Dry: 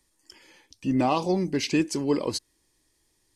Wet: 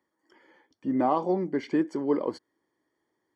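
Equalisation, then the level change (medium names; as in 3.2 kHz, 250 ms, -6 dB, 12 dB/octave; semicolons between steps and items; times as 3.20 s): Savitzky-Golay filter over 41 samples; high-pass 240 Hz 12 dB/octave; 0.0 dB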